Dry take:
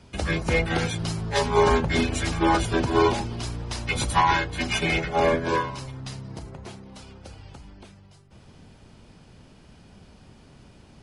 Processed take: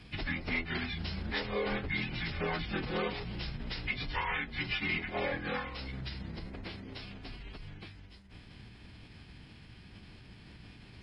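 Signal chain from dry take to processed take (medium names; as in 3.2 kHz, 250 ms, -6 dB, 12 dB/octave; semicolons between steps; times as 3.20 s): graphic EQ 1/2/4/8 kHz -6/+8/+5/-5 dB; compression 2.5:1, threshold -37 dBFS, peak gain reduction 15 dB; formant-preserving pitch shift -12 st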